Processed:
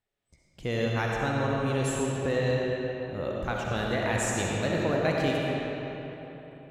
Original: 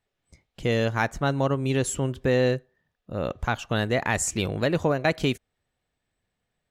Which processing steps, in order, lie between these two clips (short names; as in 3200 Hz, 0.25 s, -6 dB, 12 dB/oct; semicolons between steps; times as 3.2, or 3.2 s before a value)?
digital reverb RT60 3.7 s, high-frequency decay 0.65×, pre-delay 25 ms, DRR -3 dB; gain -7 dB